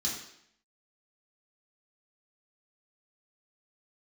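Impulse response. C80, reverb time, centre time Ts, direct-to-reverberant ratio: 7.0 dB, 0.70 s, 42 ms, −5.5 dB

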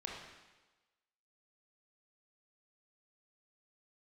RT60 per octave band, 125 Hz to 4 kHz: 1.0, 1.1, 1.2, 1.2, 1.2, 1.2 seconds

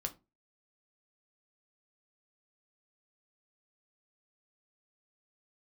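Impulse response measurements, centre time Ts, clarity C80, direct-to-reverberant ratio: 7 ms, 25.0 dB, 4.5 dB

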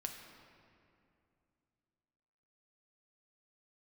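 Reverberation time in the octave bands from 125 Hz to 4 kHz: 3.2, 3.1, 2.7, 2.4, 2.1, 1.6 seconds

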